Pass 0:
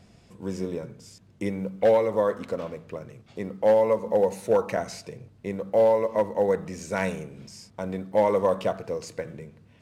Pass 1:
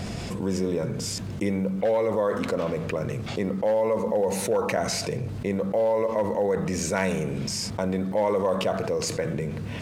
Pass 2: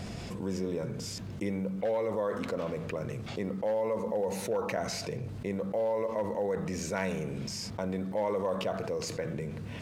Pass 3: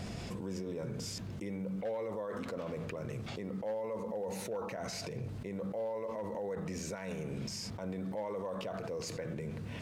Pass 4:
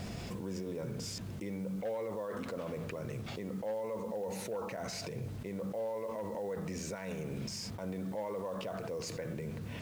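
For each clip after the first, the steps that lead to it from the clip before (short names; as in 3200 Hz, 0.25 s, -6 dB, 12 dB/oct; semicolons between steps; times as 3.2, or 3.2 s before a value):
fast leveller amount 70%; gain -5 dB
dynamic EQ 8800 Hz, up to -5 dB, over -50 dBFS, Q 1.7; gain -7 dB
limiter -29 dBFS, peak gain reduction 11 dB; gain -2 dB
block floating point 5-bit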